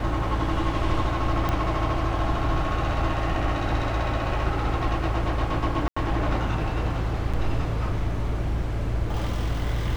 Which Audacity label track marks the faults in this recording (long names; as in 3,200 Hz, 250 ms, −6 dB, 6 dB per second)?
1.490000	1.490000	click −13 dBFS
5.880000	5.960000	drop-out 85 ms
7.330000	7.340000	drop-out 5.7 ms